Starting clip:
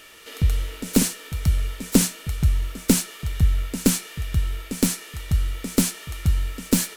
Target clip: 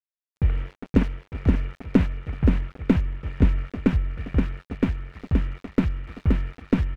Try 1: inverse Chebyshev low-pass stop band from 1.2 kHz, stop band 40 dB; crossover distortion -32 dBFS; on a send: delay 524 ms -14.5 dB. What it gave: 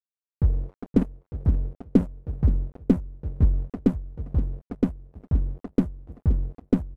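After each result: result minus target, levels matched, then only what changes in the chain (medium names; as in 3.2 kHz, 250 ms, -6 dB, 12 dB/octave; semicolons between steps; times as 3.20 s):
4 kHz band -11.0 dB; echo-to-direct -10.5 dB
change: inverse Chebyshev low-pass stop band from 4.7 kHz, stop band 40 dB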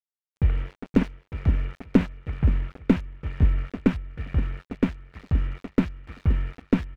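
echo-to-direct -10.5 dB
change: delay 524 ms -4 dB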